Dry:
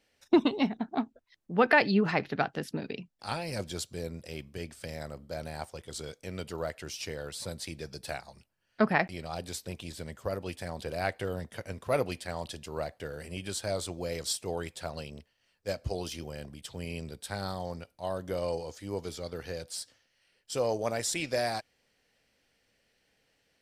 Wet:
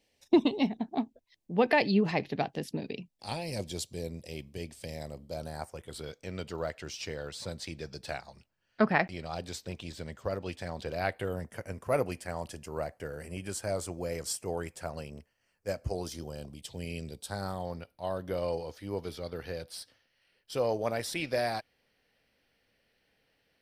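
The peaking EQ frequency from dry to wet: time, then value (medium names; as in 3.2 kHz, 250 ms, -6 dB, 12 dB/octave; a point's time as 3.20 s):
peaking EQ -14 dB 0.54 oct
5.26 s 1.4 kHz
6.22 s 11 kHz
10.89 s 11 kHz
11.39 s 3.7 kHz
15.87 s 3.7 kHz
17.01 s 920 Hz
17.70 s 7.2 kHz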